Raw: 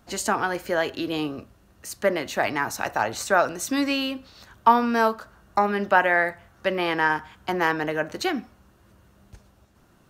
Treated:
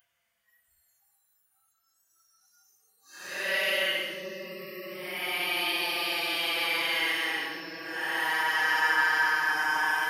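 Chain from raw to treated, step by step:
extreme stretch with random phases 14×, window 0.05 s, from 0:06.41
first-order pre-emphasis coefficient 0.97
noise reduction from a noise print of the clip's start 20 dB
level +9 dB

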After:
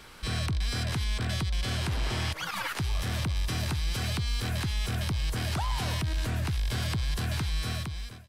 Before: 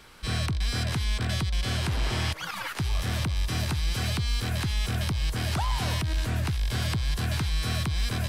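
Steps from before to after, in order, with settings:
fade-out on the ending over 1.15 s
brickwall limiter −25 dBFS, peak gain reduction 5 dB
level +2 dB

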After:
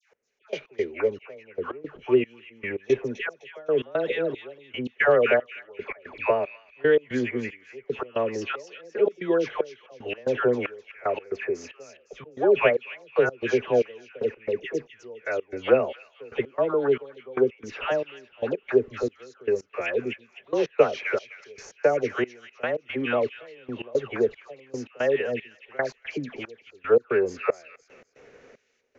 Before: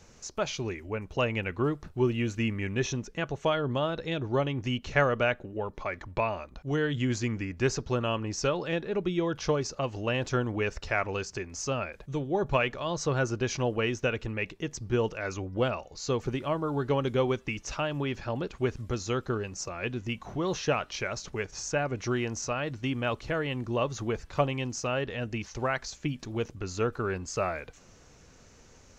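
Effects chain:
hollow resonant body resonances 240/410 Hz, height 7 dB
automatic gain control gain up to 8 dB
graphic EQ with 10 bands 125 Hz +7 dB, 500 Hz +8 dB, 1,000 Hz −5 dB, 2,000 Hz +7 dB
downsampling to 16,000 Hz
all-pass dispersion lows, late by 127 ms, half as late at 1,200 Hz
gate pattern "x...x.xx" 114 BPM −24 dB
three-way crossover with the lows and the highs turned down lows −19 dB, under 340 Hz, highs −16 dB, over 2,900 Hz
delay with a high-pass on its return 255 ms, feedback 32%, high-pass 3,100 Hz, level −6 dB
level −4.5 dB

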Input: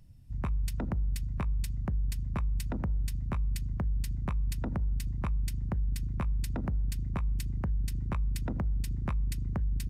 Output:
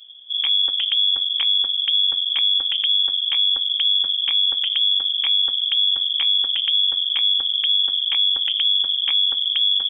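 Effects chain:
parametric band 250 Hz +3.5 dB 1.1 octaves
hum removal 251.3 Hz, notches 5
voice inversion scrambler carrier 3,400 Hz
level +8.5 dB

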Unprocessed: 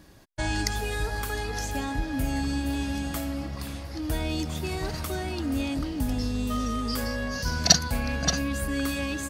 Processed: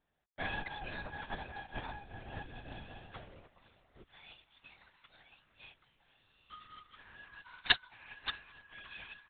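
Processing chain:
high-pass filter 450 Hz 12 dB per octave, from 0:04.04 1,400 Hz
linear-prediction vocoder at 8 kHz whisper
expander for the loud parts 2.5 to 1, over −44 dBFS
level +4 dB

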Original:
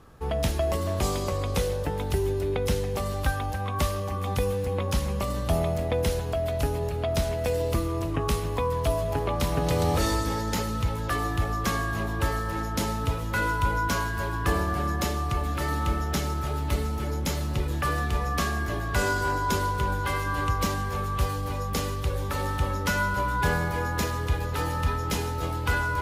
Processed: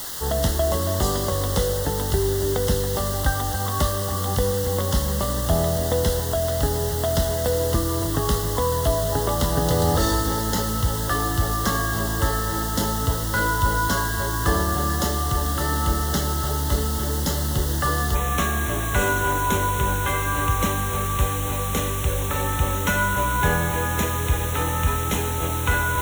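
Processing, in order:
bit-depth reduction 6 bits, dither triangular
Butterworth band-reject 2,400 Hz, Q 2.7, from 0:18.14 4,800 Hz
level +4 dB

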